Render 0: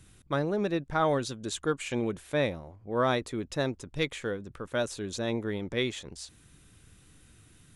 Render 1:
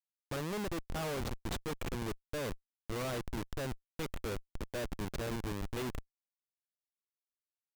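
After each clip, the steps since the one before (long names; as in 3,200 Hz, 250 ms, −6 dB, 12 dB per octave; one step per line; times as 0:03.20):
comparator with hysteresis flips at −30.5 dBFS
level −4 dB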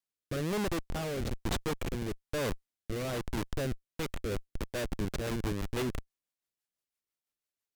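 rotating-speaker cabinet horn 1.1 Hz, later 6 Hz, at 0:03.79
level +6 dB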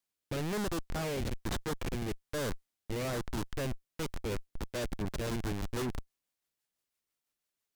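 soft clipping −35.5 dBFS, distortion −10 dB
level +4 dB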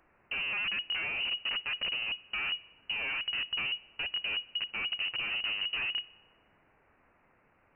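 background noise blue −50 dBFS
voice inversion scrambler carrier 2,900 Hz
delay with a high-pass on its return 61 ms, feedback 66%, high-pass 2,300 Hz, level −20 dB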